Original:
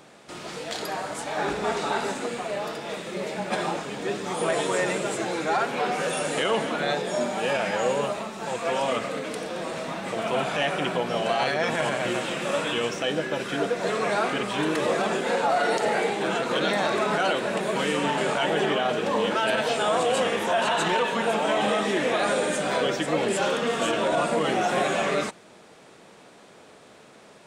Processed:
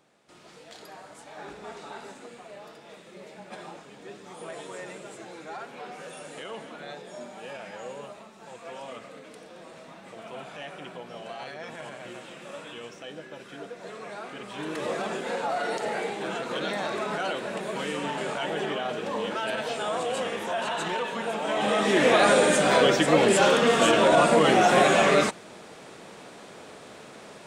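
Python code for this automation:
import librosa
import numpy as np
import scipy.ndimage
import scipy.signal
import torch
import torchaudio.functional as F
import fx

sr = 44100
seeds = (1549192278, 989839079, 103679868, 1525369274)

y = fx.gain(x, sr, db=fx.line((14.25, -14.5), (14.87, -6.0), (21.39, -6.0), (22.06, 5.0)))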